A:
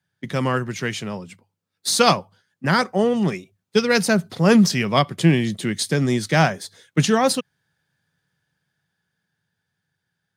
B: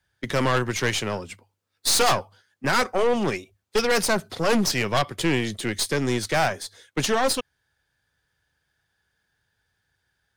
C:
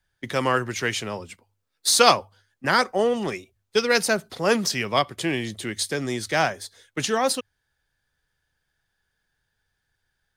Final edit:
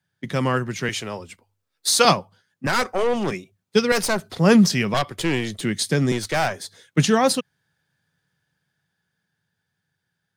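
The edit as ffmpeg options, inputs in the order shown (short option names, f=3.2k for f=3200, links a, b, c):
-filter_complex "[1:a]asplit=4[a][b][c][d];[0:a]asplit=6[e][f][g][h][i][j];[e]atrim=end=0.892[k];[2:a]atrim=start=0.888:end=2.052[l];[f]atrim=start=2.048:end=2.672[m];[a]atrim=start=2.668:end=3.312[n];[g]atrim=start=3.308:end=3.922[o];[b]atrim=start=3.918:end=4.372[p];[h]atrim=start=4.368:end=4.942[q];[c]atrim=start=4.938:end=5.612[r];[i]atrim=start=5.608:end=6.122[s];[d]atrim=start=6.118:end=6.602[t];[j]atrim=start=6.598[u];[k][l]acrossfade=d=0.004:c1=hsin:c2=hsin[v];[v][m]acrossfade=d=0.004:c1=hsin:c2=hsin[w];[w][n]acrossfade=d=0.004:c1=hsin:c2=hsin[x];[x][o]acrossfade=d=0.004:c1=hsin:c2=hsin[y];[y][p]acrossfade=d=0.004:c1=hsin:c2=hsin[z];[z][q]acrossfade=d=0.004:c1=hsin:c2=hsin[aa];[aa][r]acrossfade=d=0.004:c1=hsin:c2=hsin[ab];[ab][s]acrossfade=d=0.004:c1=hsin:c2=hsin[ac];[ac][t]acrossfade=d=0.004:c1=hsin:c2=hsin[ad];[ad][u]acrossfade=d=0.004:c1=hsin:c2=hsin"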